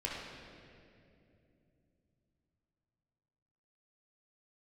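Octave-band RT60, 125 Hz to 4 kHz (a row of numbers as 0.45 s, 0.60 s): 4.7 s, 4.1 s, 3.3 s, 2.2 s, 2.2 s, 1.8 s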